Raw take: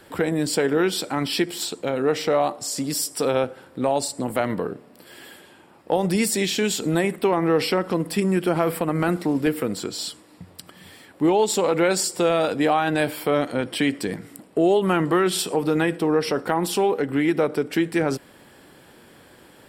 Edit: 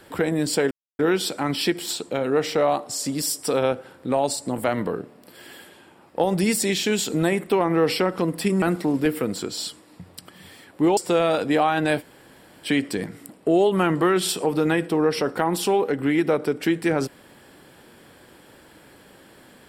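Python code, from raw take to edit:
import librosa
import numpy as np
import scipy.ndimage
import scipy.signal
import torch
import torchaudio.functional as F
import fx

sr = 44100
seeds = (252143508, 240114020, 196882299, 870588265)

y = fx.edit(x, sr, fx.insert_silence(at_s=0.71, length_s=0.28),
    fx.cut(start_s=8.34, length_s=0.69),
    fx.cut(start_s=11.38, length_s=0.69),
    fx.room_tone_fill(start_s=13.1, length_s=0.66, crossfade_s=0.06), tone=tone)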